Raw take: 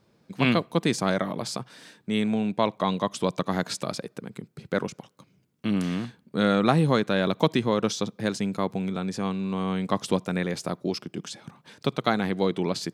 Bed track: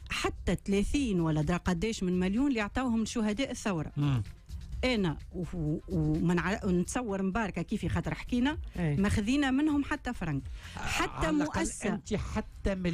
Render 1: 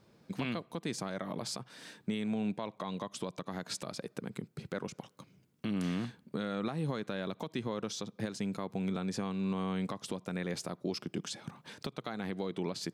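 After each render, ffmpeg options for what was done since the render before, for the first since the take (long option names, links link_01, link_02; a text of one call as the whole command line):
ffmpeg -i in.wav -af "acompressor=threshold=-26dB:ratio=3,alimiter=level_in=0.5dB:limit=-24dB:level=0:latency=1:release=398,volume=-0.5dB" out.wav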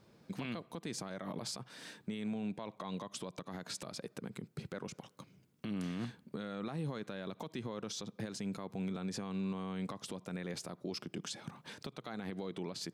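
ffmpeg -i in.wav -af "alimiter=level_in=7dB:limit=-24dB:level=0:latency=1:release=67,volume=-7dB" out.wav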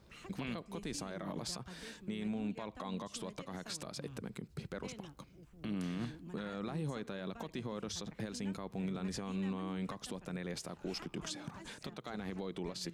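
ffmpeg -i in.wav -i bed.wav -filter_complex "[1:a]volume=-22dB[link_01];[0:a][link_01]amix=inputs=2:normalize=0" out.wav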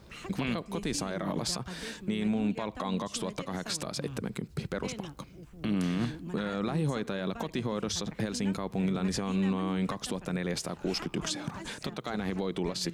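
ffmpeg -i in.wav -af "volume=9dB" out.wav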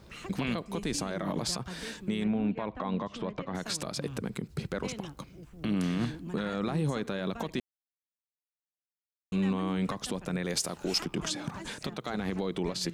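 ffmpeg -i in.wav -filter_complex "[0:a]asettb=1/sr,asplit=3[link_01][link_02][link_03];[link_01]atrim=end=2.244[link_04];[link_02]atrim=start=2.24:end=3.55,asetpts=PTS-STARTPTS,afade=type=in:duration=0.004:curve=qsin,afade=type=out:start_time=1.306:duration=0.004:curve=qsin,lowpass=2400[link_05];[link_03]atrim=start=3.546[link_06];[link_04][link_05]acrossfade=duration=0.004:curve1=hsin:curve2=qsin[link_07];[link_07][link_06]acrossfade=duration=0.004:curve1=qsin:curve2=hsin,asettb=1/sr,asplit=3[link_08][link_09][link_10];[link_08]atrim=end=10.454[link_11];[link_09]atrim=start=10.45:end=11.05,asetpts=PTS-STARTPTS,afade=type=in:duration=0.004:curve=qsin,afade=type=out:start_time=0.596:duration=0.004:curve=qsin,bass=frequency=250:gain=-3,treble=frequency=4000:gain=8[link_12];[link_10]atrim=start=11.046[link_13];[link_11][link_12]acrossfade=duration=0.004:curve1=hsin:curve2=qsin[link_14];[link_14][link_13]acrossfade=duration=0.004:curve1=qsin:curve2=hsin,asplit=3[link_15][link_16][link_17];[link_15]atrim=end=7.6,asetpts=PTS-STARTPTS,afade=type=out:start_time=7.596:duration=0.004:curve=hsin[link_18];[link_16]atrim=start=7.6:end=9.32,asetpts=PTS-STARTPTS,volume=0[link_19];[link_17]atrim=start=9.32,asetpts=PTS-STARTPTS,afade=type=in:duration=0.004:curve=hsin[link_20];[link_18][link_19][link_20]concat=n=3:v=0:a=1" out.wav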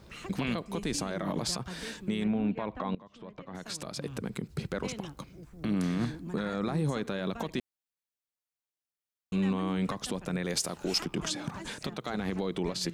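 ffmpeg -i in.wav -filter_complex "[0:a]asettb=1/sr,asplit=3[link_01][link_02][link_03];[link_01]atrim=end=5.334[link_04];[link_02]atrim=start=5.33:end=6.88,asetpts=PTS-STARTPTS,afade=type=in:duration=0.004:curve=qsin,afade=type=out:start_time=1.546:duration=0.004:curve=qsin,equalizer=frequency=2900:width_type=o:width=0.31:gain=-7.5[link_05];[link_03]atrim=start=6.876[link_06];[link_04][link_05]acrossfade=duration=0.004:curve1=hsin:curve2=qsin[link_07];[link_07][link_06]acrossfade=duration=0.004:curve1=qsin:curve2=hsin,asplit=2[link_08][link_09];[link_08]atrim=end=2.95,asetpts=PTS-STARTPTS,afade=type=out:start_time=2.946:duration=0.004:curve=hsin:silence=0.0944061[link_10];[link_09]atrim=start=2.95,asetpts=PTS-STARTPTS,afade=type=in:duration=1.46:silence=0.0944061[link_11];[link_10][link_11]concat=n=2:v=0:a=1" out.wav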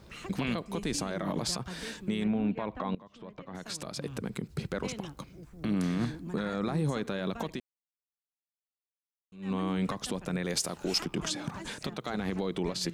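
ffmpeg -i in.wav -filter_complex "[0:a]asplit=3[link_01][link_02][link_03];[link_01]atrim=end=7.7,asetpts=PTS-STARTPTS,afade=type=out:start_time=7.52:duration=0.18:curve=qua:silence=0.0944061[link_04];[link_02]atrim=start=7.7:end=9.36,asetpts=PTS-STARTPTS,volume=-20.5dB[link_05];[link_03]atrim=start=9.36,asetpts=PTS-STARTPTS,afade=type=in:duration=0.18:curve=qua:silence=0.0944061[link_06];[link_04][link_05][link_06]concat=n=3:v=0:a=1" out.wav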